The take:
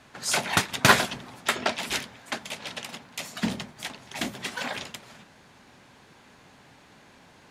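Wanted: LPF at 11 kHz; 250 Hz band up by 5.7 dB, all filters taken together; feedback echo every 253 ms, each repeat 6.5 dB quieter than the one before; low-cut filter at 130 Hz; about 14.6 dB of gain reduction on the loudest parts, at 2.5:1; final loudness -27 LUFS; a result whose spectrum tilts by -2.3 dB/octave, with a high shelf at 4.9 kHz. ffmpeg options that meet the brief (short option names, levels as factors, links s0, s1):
-af "highpass=130,lowpass=11000,equalizer=f=250:t=o:g=7.5,highshelf=f=4900:g=3,acompressor=threshold=0.02:ratio=2.5,aecho=1:1:253|506|759|1012|1265|1518:0.473|0.222|0.105|0.0491|0.0231|0.0109,volume=2.37"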